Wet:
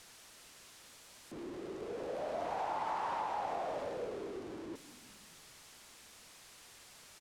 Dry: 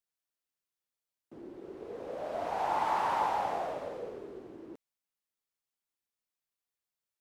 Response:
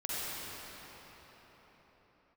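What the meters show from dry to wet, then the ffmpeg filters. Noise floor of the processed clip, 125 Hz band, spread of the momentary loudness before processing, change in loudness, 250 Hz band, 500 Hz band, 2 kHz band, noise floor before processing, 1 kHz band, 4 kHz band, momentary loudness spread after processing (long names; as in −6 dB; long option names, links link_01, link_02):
−58 dBFS, −1.5 dB, 19 LU, −6.5 dB, 0.0 dB, −2.0 dB, −4.5 dB, below −85 dBFS, −6.0 dB, −1.0 dB, 18 LU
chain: -filter_complex "[0:a]aeval=exprs='val(0)+0.5*0.00668*sgn(val(0))':channel_layout=same,lowpass=9100,acompressor=threshold=-32dB:ratio=6,asplit=2[link_01][link_02];[link_02]asplit=7[link_03][link_04][link_05][link_06][link_07][link_08][link_09];[link_03]adelay=173,afreqshift=-40,volume=-16.5dB[link_10];[link_04]adelay=346,afreqshift=-80,volume=-20.4dB[link_11];[link_05]adelay=519,afreqshift=-120,volume=-24.3dB[link_12];[link_06]adelay=692,afreqshift=-160,volume=-28.1dB[link_13];[link_07]adelay=865,afreqshift=-200,volume=-32dB[link_14];[link_08]adelay=1038,afreqshift=-240,volume=-35.9dB[link_15];[link_09]adelay=1211,afreqshift=-280,volume=-39.8dB[link_16];[link_10][link_11][link_12][link_13][link_14][link_15][link_16]amix=inputs=7:normalize=0[link_17];[link_01][link_17]amix=inputs=2:normalize=0,volume=-2dB"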